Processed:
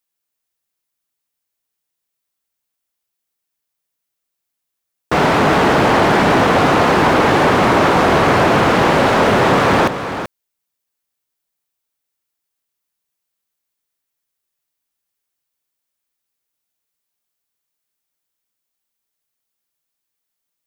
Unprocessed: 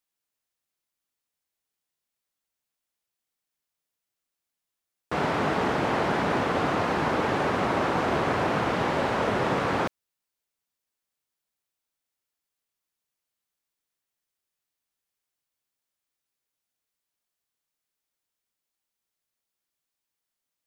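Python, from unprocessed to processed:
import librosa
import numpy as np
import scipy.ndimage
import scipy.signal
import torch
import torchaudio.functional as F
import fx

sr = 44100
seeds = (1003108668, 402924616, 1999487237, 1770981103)

y = fx.high_shelf(x, sr, hz=11000.0, db=6.5)
y = fx.leveller(y, sr, passes=2)
y = y + 10.0 ** (-10.0 / 20.0) * np.pad(y, (int(383 * sr / 1000.0), 0))[:len(y)]
y = y * librosa.db_to_amplitude(7.0)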